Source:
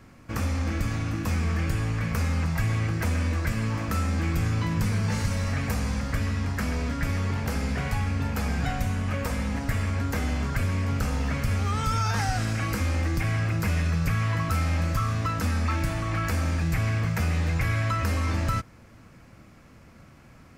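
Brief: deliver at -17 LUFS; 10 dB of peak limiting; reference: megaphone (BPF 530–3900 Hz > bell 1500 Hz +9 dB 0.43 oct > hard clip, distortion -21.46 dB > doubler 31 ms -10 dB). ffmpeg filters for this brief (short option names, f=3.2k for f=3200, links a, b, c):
-filter_complex "[0:a]alimiter=limit=-23.5dB:level=0:latency=1,highpass=530,lowpass=3.9k,equalizer=f=1.5k:t=o:w=0.43:g=9,asoftclip=type=hard:threshold=-27.5dB,asplit=2[a][b];[b]adelay=31,volume=-10dB[c];[a][c]amix=inputs=2:normalize=0,volume=18dB"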